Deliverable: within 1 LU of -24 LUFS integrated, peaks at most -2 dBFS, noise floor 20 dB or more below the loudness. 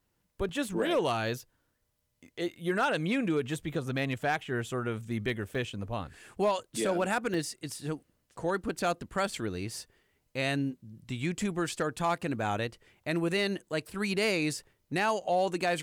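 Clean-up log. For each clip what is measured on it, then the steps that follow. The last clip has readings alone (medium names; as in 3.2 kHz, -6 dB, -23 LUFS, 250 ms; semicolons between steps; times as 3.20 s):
clipped samples 0.2%; clipping level -20.0 dBFS; dropouts 3; longest dropout 2.3 ms; loudness -32.0 LUFS; peak level -20.0 dBFS; loudness target -24.0 LUFS
-> clip repair -20 dBFS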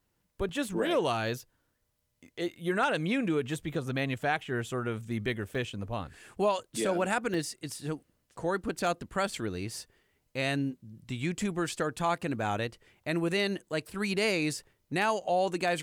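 clipped samples 0.0%; dropouts 3; longest dropout 2.3 ms
-> interpolate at 0.49/5.55/7.34 s, 2.3 ms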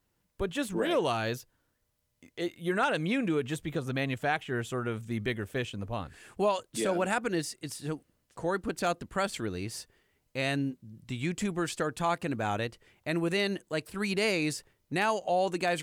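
dropouts 0; loudness -32.0 LUFS; peak level -14.0 dBFS; loudness target -24.0 LUFS
-> trim +8 dB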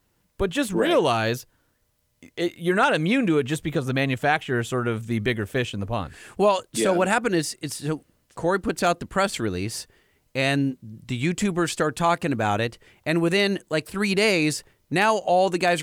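loudness -24.0 LUFS; peak level -6.0 dBFS; noise floor -69 dBFS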